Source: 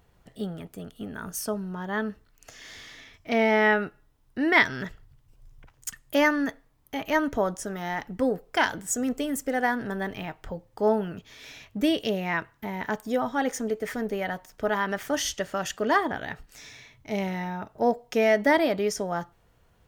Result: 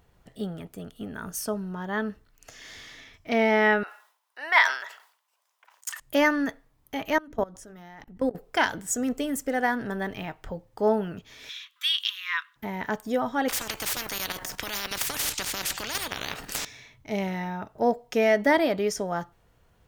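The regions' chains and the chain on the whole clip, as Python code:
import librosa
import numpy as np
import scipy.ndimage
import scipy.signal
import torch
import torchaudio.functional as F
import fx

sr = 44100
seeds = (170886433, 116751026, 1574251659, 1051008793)

y = fx.chain(x, sr, fx.highpass(hz=710.0, slope=24),
    fx.peak_eq(hz=1000.0, db=5.5, octaves=0.29),
    fx.sustainer(db_per_s=110.0), at=(3.83, 6.0))
y = fx.chain(y, sr, fx.low_shelf(hz=150.0, db=8.0),
    fx.hum_notches(base_hz=50, count=6),
    fx.level_steps(step_db=23), at=(7.18, 8.35))
y = fx.chain(y, sr, fx.brickwall_highpass(low_hz=990.0),
    fx.peak_eq(hz=3500.0, db=14.0, octaves=0.41), at=(11.49, 12.56))
y = fx.chain(y, sr, fx.level_steps(step_db=10),
    fx.spectral_comp(ratio=10.0), at=(13.48, 16.65))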